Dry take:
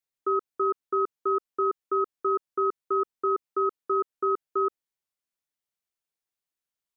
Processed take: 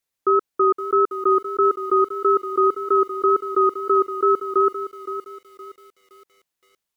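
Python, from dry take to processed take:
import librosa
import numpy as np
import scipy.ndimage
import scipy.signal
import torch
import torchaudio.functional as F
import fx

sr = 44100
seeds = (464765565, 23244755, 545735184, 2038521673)

y = fx.wow_flutter(x, sr, seeds[0], rate_hz=2.1, depth_cents=29.0)
y = fx.echo_crushed(y, sr, ms=517, feedback_pct=35, bits=9, wet_db=-11.5)
y = y * 10.0 ** (8.0 / 20.0)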